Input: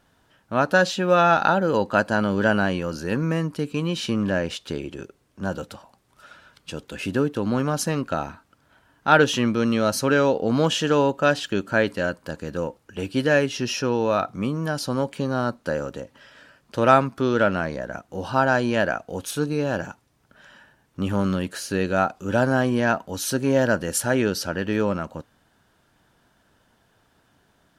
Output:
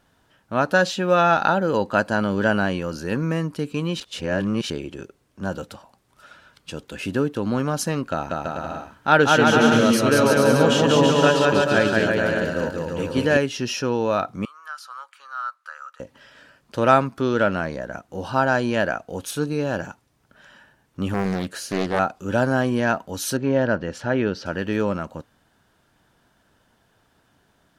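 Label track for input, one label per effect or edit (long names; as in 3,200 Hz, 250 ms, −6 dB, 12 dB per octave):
4.000000	4.700000	reverse
8.110000	13.370000	bouncing-ball delay first gap 190 ms, each gap 0.75×, echoes 6, each echo −2 dB
14.450000	16.000000	four-pole ladder high-pass 1,200 Hz, resonance 80%
21.140000	21.990000	highs frequency-modulated by the lows depth 0.75 ms
23.370000	24.460000	high-frequency loss of the air 200 metres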